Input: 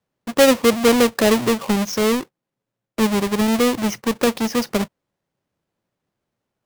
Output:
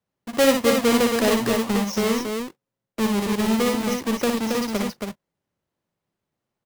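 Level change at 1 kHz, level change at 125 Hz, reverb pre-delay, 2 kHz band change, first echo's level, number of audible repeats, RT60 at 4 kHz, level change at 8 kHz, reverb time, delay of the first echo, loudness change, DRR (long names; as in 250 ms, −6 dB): −3.0 dB, −2.5 dB, no reverb audible, −3.0 dB, −3.5 dB, 2, no reverb audible, −3.0 dB, no reverb audible, 59 ms, −3.5 dB, no reverb audible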